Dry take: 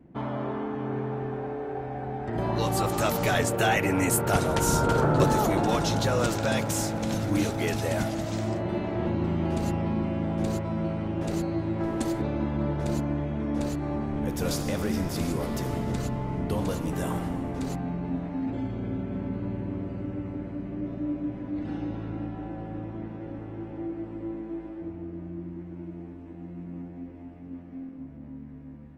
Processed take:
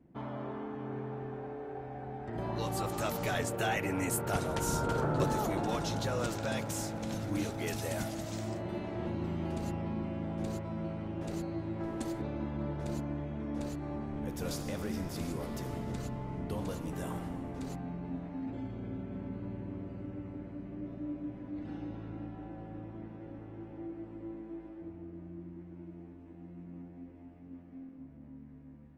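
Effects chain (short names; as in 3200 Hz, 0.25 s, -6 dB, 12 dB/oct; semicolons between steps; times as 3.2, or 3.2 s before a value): 7.66–9.52 high shelf 5600 Hz +8.5 dB; gain -8.5 dB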